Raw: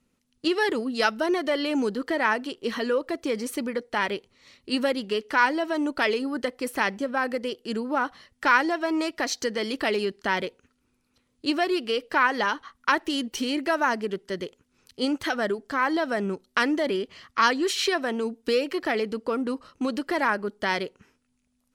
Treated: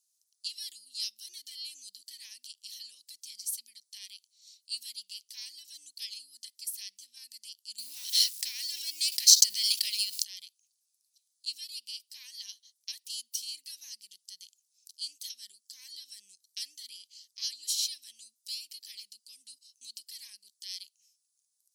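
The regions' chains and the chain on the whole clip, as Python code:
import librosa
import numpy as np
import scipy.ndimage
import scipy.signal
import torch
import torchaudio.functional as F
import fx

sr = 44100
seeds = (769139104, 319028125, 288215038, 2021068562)

y = fx.chain(x, sr, fx.law_mismatch(coded='A'),
    fx.peak_eq(hz=2200.0, db=5.0, octaves=0.79),
    fx.env_flatten(amount_pct=100), at=(7.78, 10.24))
y = scipy.signal.sosfilt(scipy.signal.cheby2(4, 60, 1500.0, 'highpass', fs=sr, output='sos'), y)
y = fx.dynamic_eq(y, sr, hz=6700.0, q=1.2, threshold_db=-56.0, ratio=4.0, max_db=-5)
y = y * librosa.db_to_amplitude(6.5)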